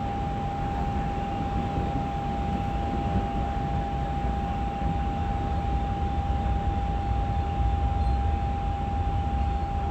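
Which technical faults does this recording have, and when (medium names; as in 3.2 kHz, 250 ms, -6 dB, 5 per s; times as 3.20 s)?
whine 800 Hz -31 dBFS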